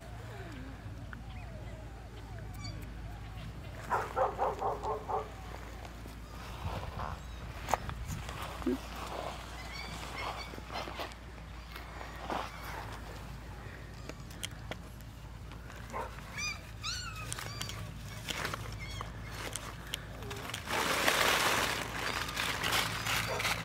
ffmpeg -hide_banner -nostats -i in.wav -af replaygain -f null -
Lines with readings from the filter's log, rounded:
track_gain = +15.5 dB
track_peak = 0.235